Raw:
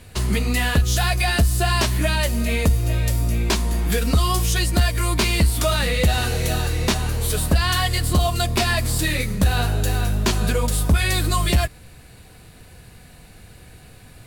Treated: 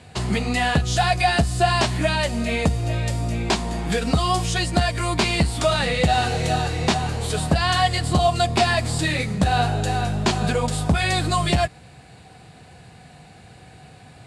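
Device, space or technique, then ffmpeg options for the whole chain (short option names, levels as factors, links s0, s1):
car door speaker: -af "highpass=91,equalizer=f=150:t=q:w=4:g=5,equalizer=f=760:t=q:w=4:g=9,equalizer=f=6000:t=q:w=4:g=-4,lowpass=f=8300:w=0.5412,lowpass=f=8300:w=1.3066"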